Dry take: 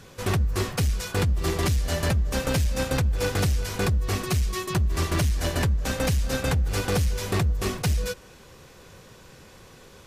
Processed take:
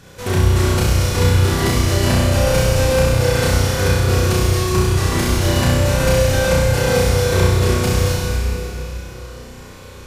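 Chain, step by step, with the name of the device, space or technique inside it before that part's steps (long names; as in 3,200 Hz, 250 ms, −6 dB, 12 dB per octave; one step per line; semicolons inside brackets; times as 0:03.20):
tunnel (flutter between parallel walls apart 5.6 metres, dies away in 1.1 s; convolution reverb RT60 3.4 s, pre-delay 43 ms, DRR −1.5 dB)
level +1.5 dB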